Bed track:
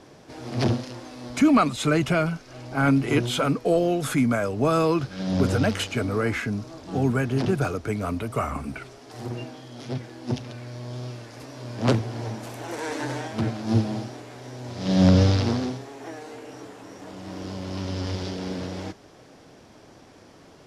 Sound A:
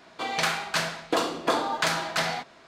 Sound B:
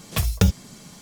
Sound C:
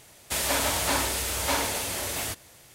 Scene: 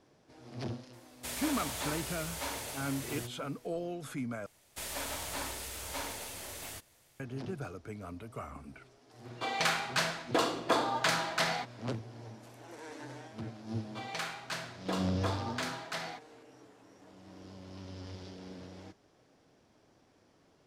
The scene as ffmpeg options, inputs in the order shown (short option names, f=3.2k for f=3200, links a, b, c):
-filter_complex "[3:a]asplit=2[a][b];[1:a]asplit=2[c][d];[0:a]volume=-16dB[e];[b]aeval=exprs='if(lt(val(0),0),0.708*val(0),val(0))':c=same[f];[e]asplit=2[g][h];[g]atrim=end=4.464[i];[f]atrim=end=2.74,asetpts=PTS-STARTPTS,volume=-11.5dB[j];[h]atrim=start=7.196[k];[a]atrim=end=2.74,asetpts=PTS-STARTPTS,volume=-12dB,afade=t=in:d=0.004:c=hsin,afade=t=out:st=2.736:d=0.004:c=hsin,adelay=930[l];[c]atrim=end=2.67,asetpts=PTS-STARTPTS,volume=-4dB,afade=t=in:d=0.05,afade=t=out:st=2.62:d=0.05,adelay=406602S[m];[d]atrim=end=2.67,asetpts=PTS-STARTPTS,volume=-12dB,afade=t=in:d=0.004:c=hsin,afade=t=out:st=2.666:d=0.004:c=hsin,adelay=13760[n];[i][j]acrossfade=d=0.004:c1=hsin:c2=hsin[o];[o][k]acrossfade=d=0.004:c1=hsin:c2=hsin[p];[p][l][m][n]amix=inputs=4:normalize=0"